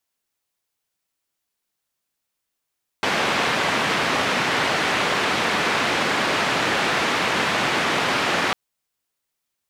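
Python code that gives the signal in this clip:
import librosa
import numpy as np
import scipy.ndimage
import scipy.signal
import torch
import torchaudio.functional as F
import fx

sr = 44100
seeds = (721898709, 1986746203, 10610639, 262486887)

y = fx.band_noise(sr, seeds[0], length_s=5.5, low_hz=150.0, high_hz=2300.0, level_db=-21.5)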